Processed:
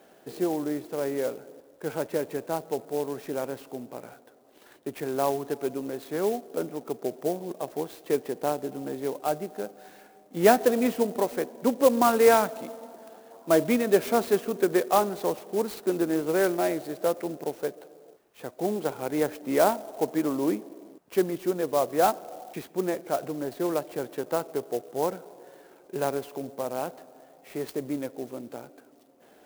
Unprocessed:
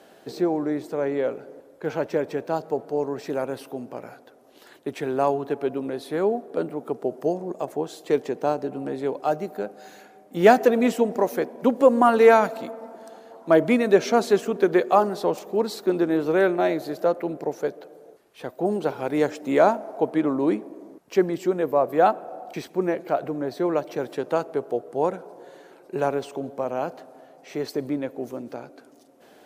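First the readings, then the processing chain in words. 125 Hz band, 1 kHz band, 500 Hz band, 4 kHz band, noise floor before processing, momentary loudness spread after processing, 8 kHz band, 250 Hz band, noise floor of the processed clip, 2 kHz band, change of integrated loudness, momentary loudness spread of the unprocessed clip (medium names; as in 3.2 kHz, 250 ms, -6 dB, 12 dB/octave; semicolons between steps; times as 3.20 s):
-4.0 dB, -4.5 dB, -4.0 dB, -1.0 dB, -52 dBFS, 15 LU, +5.5 dB, -4.0 dB, -56 dBFS, -4.5 dB, -4.0 dB, 15 LU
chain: wow and flutter 18 cents; sampling jitter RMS 0.043 ms; trim -4 dB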